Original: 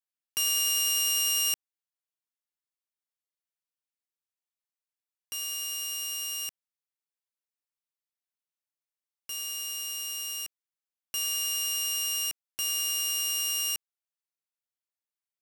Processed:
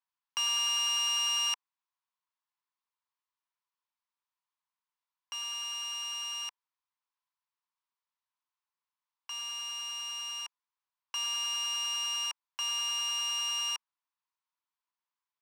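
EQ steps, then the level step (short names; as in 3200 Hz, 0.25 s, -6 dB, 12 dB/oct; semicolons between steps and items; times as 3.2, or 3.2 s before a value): resonant high-pass 990 Hz, resonance Q 6.2; air absorption 170 m; high shelf 3300 Hz +9 dB; -1.5 dB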